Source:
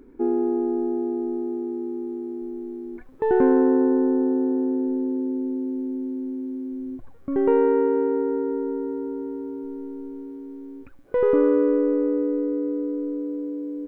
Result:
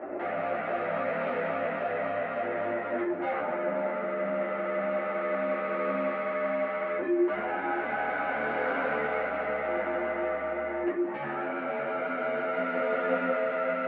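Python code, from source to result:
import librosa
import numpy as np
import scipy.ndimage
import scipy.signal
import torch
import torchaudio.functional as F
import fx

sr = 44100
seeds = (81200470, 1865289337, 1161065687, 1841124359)

p1 = fx.peak_eq(x, sr, hz=370.0, db=-4.5, octaves=0.72)
p2 = fx.over_compress(p1, sr, threshold_db=-30.0, ratio=-1.0)
p3 = fx.fold_sine(p2, sr, drive_db=19, ceiling_db=-9.0)
p4 = p3 * np.sin(2.0 * np.pi * 350.0 * np.arange(len(p3)) / sr)
p5 = 10.0 ** (-24.0 / 20.0) * np.tanh(p4 / 10.0 ** (-24.0 / 20.0))
p6 = fx.cabinet(p5, sr, low_hz=230.0, low_slope=24, high_hz=2100.0, hz=(370.0, 720.0, 1100.0), db=(-5, -8, -7))
p7 = p6 + fx.echo_single(p6, sr, ms=528, db=-11.5, dry=0)
p8 = fx.room_shoebox(p7, sr, seeds[0], volume_m3=130.0, walls='furnished', distance_m=1.8)
y = fx.ensemble(p8, sr)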